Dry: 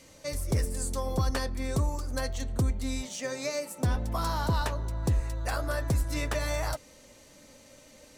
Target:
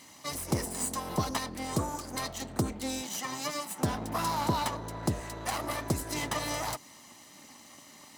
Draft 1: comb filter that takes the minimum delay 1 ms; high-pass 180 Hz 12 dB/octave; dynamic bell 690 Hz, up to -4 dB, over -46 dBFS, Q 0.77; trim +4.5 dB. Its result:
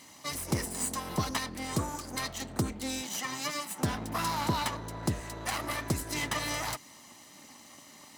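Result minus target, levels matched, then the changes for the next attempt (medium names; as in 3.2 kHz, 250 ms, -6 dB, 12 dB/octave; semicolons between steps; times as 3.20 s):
2 kHz band +3.0 dB
change: dynamic bell 2 kHz, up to -4 dB, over -46 dBFS, Q 0.77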